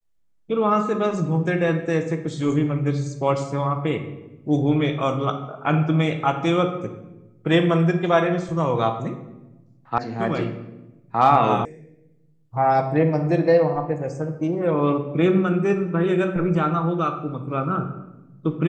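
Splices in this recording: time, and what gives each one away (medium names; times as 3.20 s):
9.98 s: sound stops dead
11.65 s: sound stops dead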